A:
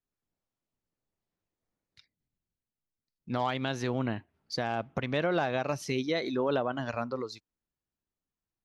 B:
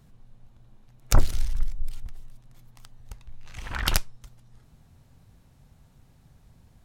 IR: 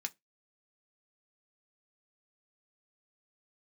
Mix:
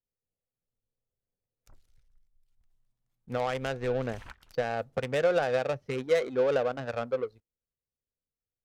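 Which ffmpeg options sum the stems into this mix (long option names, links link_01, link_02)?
-filter_complex "[0:a]equalizer=frequency=200:width_type=o:width=0.33:gain=-7,equalizer=frequency=315:width_type=o:width=0.33:gain=-11,equalizer=frequency=500:width_type=o:width=0.33:gain=10,equalizer=frequency=1000:width_type=o:width=0.33:gain=-10,adynamicsmooth=sensitivity=3.5:basefreq=510,volume=1dB,asplit=3[link_01][link_02][link_03];[link_02]volume=-13.5dB[link_04];[1:a]adelay=550,volume=-7dB,afade=type=in:start_time=2.47:duration=0.28:silence=0.281838,afade=type=out:start_time=4.12:duration=0.27:silence=0.398107[link_05];[link_03]apad=whole_len=326338[link_06];[link_05][link_06]sidechaingate=range=-20dB:threshold=-52dB:ratio=16:detection=peak[link_07];[2:a]atrim=start_sample=2205[link_08];[link_04][link_08]afir=irnorm=-1:irlink=0[link_09];[link_01][link_07][link_09]amix=inputs=3:normalize=0,lowshelf=frequency=470:gain=-3.5"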